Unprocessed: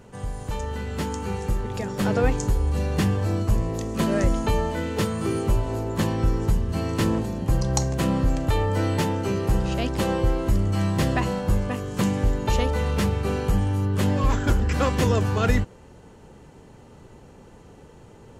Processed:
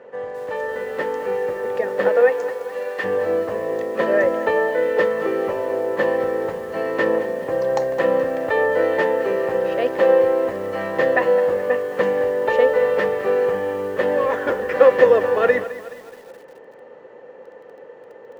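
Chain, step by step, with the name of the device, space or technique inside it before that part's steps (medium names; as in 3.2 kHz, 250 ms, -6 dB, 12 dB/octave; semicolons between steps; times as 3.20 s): tin-can telephone (band-pass 450–2100 Hz; small resonant body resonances 510/1800 Hz, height 15 dB, ringing for 35 ms); 2.08–3.03 s: high-pass 540 Hz -> 1.4 kHz 6 dB/octave; bit-crushed delay 212 ms, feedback 55%, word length 7-bit, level -14 dB; trim +4 dB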